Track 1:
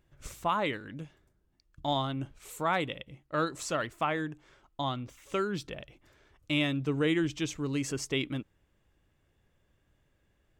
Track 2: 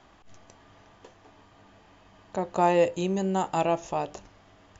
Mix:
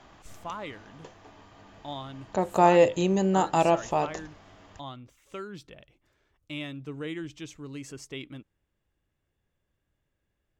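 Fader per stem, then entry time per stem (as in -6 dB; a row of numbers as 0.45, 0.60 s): -8.0, +3.0 dB; 0.00, 0.00 s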